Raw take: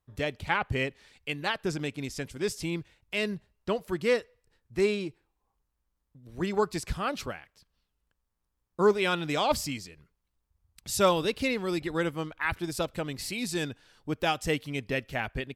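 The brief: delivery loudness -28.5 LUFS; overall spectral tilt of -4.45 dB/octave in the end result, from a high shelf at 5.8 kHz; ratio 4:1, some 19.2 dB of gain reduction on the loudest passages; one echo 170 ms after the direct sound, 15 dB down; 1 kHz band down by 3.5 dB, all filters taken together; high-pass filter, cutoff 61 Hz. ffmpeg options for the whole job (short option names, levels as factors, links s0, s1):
-af "highpass=61,equalizer=f=1000:t=o:g=-4.5,highshelf=f=5800:g=-3.5,acompressor=threshold=0.00708:ratio=4,aecho=1:1:170:0.178,volume=6.68"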